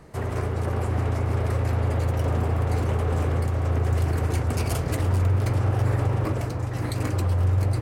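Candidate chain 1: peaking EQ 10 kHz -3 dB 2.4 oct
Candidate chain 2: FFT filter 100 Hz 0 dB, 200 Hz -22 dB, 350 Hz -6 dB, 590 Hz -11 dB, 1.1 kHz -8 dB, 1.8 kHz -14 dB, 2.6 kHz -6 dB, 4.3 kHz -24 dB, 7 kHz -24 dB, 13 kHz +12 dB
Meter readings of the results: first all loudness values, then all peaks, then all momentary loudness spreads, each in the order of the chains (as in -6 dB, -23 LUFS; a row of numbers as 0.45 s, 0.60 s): -25.0 LUFS, -26.5 LUFS; -13.0 dBFS, -15.0 dBFS; 5 LU, 7 LU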